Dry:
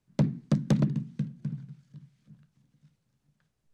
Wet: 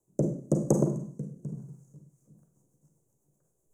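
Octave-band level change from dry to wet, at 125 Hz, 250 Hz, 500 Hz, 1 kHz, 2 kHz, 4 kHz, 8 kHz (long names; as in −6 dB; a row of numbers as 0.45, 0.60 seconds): −3.0 dB, −1.0 dB, +8.5 dB, +1.5 dB, below −15 dB, below −15 dB, can't be measured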